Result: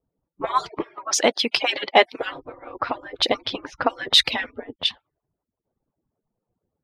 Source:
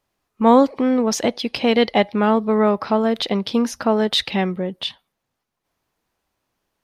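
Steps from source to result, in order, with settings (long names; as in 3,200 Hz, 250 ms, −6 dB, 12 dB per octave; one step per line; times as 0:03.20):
harmonic-percussive split with one part muted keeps percussive
low-pass that shuts in the quiet parts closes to 500 Hz, open at −21 dBFS
0:00.83–0:02.20: meter weighting curve A
level +5 dB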